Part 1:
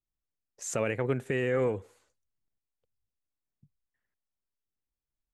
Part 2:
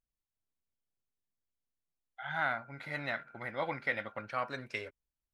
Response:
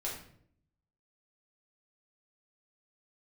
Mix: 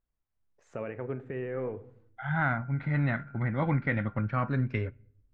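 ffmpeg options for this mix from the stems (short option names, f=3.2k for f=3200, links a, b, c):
-filter_complex "[0:a]volume=-8dB,asplit=2[a][b];[b]volume=-11.5dB[c];[1:a]asubboost=boost=11:cutoff=190,acontrast=37,volume=0.5dB,asplit=2[d][e];[e]volume=-24dB[f];[2:a]atrim=start_sample=2205[g];[c][f]amix=inputs=2:normalize=0[h];[h][g]afir=irnorm=-1:irlink=0[i];[a][d][i]amix=inputs=3:normalize=0,lowpass=1.7k"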